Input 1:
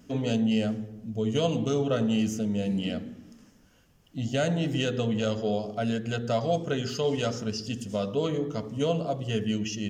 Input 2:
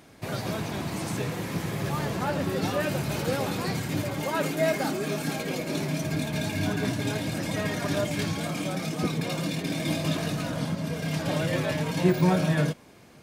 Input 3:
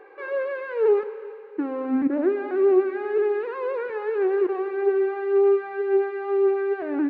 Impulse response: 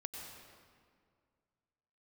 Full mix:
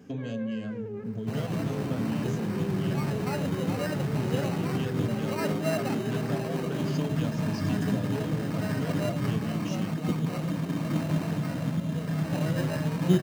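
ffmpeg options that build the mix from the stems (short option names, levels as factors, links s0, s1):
-filter_complex "[0:a]acompressor=threshold=0.02:ratio=6,volume=0.794[s0];[1:a]acrusher=samples=13:mix=1:aa=0.000001,adelay=1050,volume=0.562[s1];[2:a]highpass=370,equalizer=f=1000:t=o:w=1.7:g=-7.5,alimiter=level_in=1.26:limit=0.0631:level=0:latency=1,volume=0.794,volume=0.355[s2];[s0][s1][s2]amix=inputs=3:normalize=0,highpass=130,bass=f=250:g=10,treble=f=4000:g=-3"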